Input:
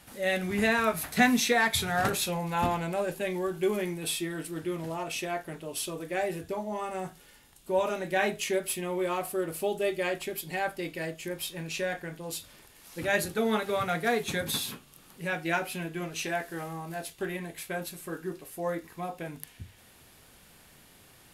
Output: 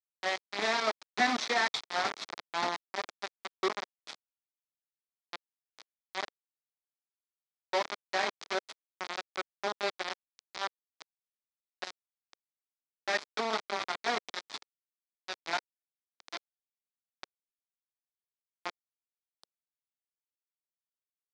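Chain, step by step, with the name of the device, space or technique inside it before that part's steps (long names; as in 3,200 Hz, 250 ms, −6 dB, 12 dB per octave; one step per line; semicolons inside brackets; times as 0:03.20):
hand-held game console (bit reduction 4 bits; loudspeaker in its box 410–5,100 Hz, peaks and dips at 500 Hz −6 dB, 1,600 Hz −4 dB, 2,800 Hz −8 dB)
level −2 dB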